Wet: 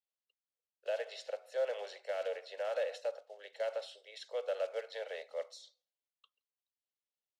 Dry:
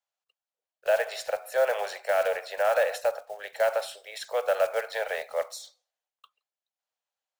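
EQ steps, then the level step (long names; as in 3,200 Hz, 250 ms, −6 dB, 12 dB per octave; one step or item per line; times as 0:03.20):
band-pass filter 290–4,600 Hz
flat-topped bell 1,100 Hz −10 dB
notch filter 2,400 Hz, Q 6.9
−7.0 dB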